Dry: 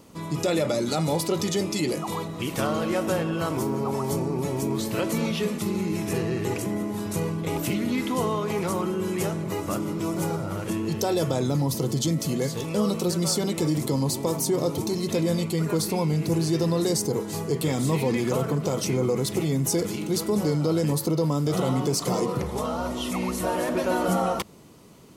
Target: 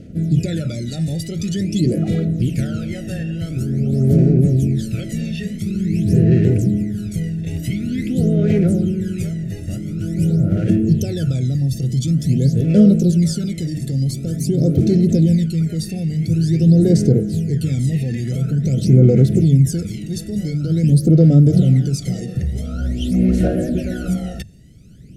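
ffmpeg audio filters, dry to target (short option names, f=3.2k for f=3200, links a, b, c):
-af "asuperstop=centerf=1000:order=8:qfactor=1.4,aphaser=in_gain=1:out_gain=1:delay=1.1:decay=0.73:speed=0.47:type=sinusoidal,lowpass=11k,bass=f=250:g=15,treble=f=4k:g=0,bandreject=f=50:t=h:w=6,bandreject=f=100:t=h:w=6,bandreject=f=150:t=h:w=6,volume=-5.5dB"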